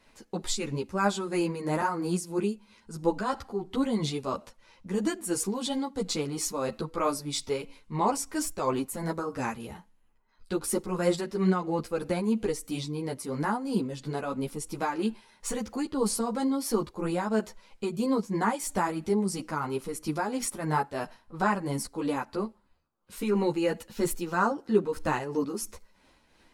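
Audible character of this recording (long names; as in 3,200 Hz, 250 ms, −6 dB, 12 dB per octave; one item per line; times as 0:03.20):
tremolo triangle 3 Hz, depth 55%
a shimmering, thickened sound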